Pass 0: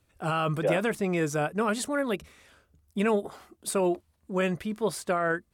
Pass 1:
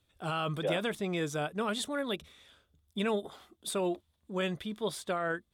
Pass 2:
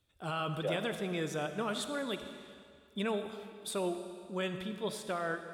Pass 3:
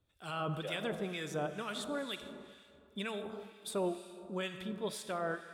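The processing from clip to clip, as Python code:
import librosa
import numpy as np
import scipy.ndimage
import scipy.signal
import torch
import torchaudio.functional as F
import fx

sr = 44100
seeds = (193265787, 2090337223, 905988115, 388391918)

y1 = fx.peak_eq(x, sr, hz=3500.0, db=14.0, octaves=0.3)
y1 = y1 * librosa.db_to_amplitude(-6.0)
y2 = fx.rev_freeverb(y1, sr, rt60_s=2.2, hf_ratio=0.95, predelay_ms=15, drr_db=8.0)
y2 = y2 * librosa.db_to_amplitude(-3.0)
y3 = fx.harmonic_tremolo(y2, sr, hz=2.1, depth_pct=70, crossover_hz=1400.0)
y3 = y3 * librosa.db_to_amplitude(1.0)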